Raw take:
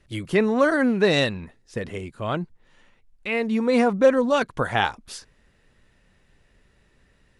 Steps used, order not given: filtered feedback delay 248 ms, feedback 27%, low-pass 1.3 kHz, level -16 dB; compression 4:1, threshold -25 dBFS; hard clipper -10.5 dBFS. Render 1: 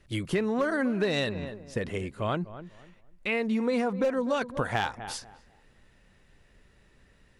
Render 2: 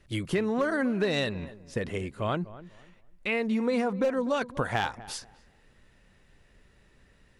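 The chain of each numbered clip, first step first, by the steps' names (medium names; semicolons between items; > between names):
filtered feedback delay > hard clipper > compression; hard clipper > compression > filtered feedback delay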